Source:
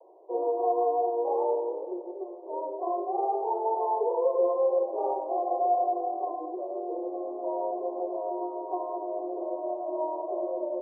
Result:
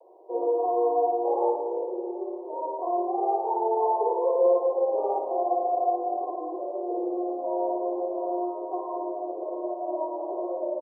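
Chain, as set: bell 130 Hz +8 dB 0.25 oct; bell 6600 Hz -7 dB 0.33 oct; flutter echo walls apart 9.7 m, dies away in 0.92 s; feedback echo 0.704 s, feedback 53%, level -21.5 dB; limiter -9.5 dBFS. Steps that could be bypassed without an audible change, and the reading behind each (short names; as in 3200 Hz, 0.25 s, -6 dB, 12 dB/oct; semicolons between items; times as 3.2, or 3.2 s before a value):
bell 130 Hz: input band starts at 300 Hz; bell 6600 Hz: input band ends at 1100 Hz; limiter -9.5 dBFS: input peak -12.0 dBFS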